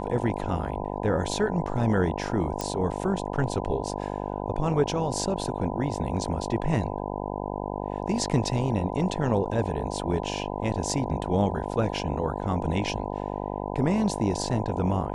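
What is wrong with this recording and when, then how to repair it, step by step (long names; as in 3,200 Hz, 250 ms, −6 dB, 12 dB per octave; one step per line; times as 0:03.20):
mains buzz 50 Hz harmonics 20 −32 dBFS
0:02.61: click −15 dBFS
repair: click removal
hum removal 50 Hz, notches 20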